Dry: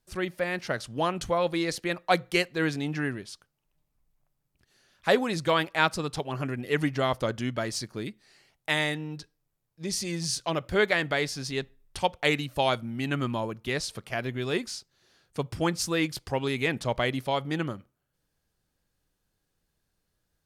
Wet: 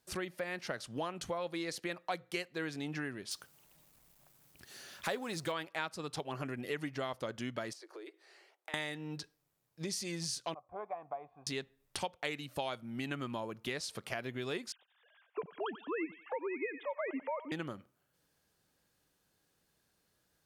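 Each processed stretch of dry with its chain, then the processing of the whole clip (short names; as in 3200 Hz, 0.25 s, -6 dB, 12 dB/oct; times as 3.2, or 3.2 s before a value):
3.31–5.52 G.711 law mismatch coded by mu + high shelf 8400 Hz +6.5 dB
7.73–8.74 steep high-pass 320 Hz 96 dB/oct + high shelf 2500 Hz -11.5 dB + compressor 8:1, threshold -48 dBFS
10.54–11.47 vocal tract filter a + low shelf 100 Hz +11.5 dB
14.72–17.52 sine-wave speech + thinning echo 90 ms, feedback 47%, high-pass 1000 Hz, level -13 dB
whole clip: HPF 200 Hz 6 dB/oct; compressor 4:1, threshold -42 dBFS; gain +4 dB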